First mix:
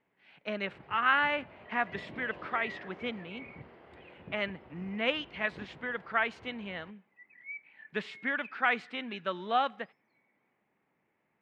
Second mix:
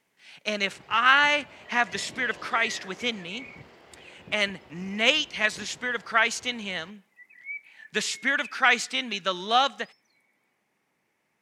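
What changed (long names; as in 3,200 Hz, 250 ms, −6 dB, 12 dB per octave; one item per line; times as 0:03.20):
speech +3.5 dB
master: remove high-frequency loss of the air 490 metres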